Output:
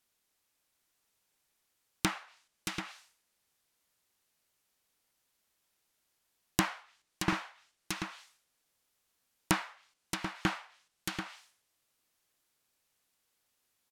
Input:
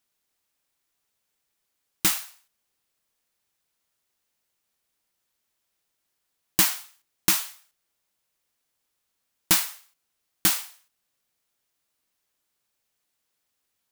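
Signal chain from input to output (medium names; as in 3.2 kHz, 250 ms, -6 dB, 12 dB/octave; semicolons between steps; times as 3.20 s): multi-tap echo 624/736 ms -10.5/-9 dB; low-pass that closes with the level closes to 1.6 kHz, closed at -25.5 dBFS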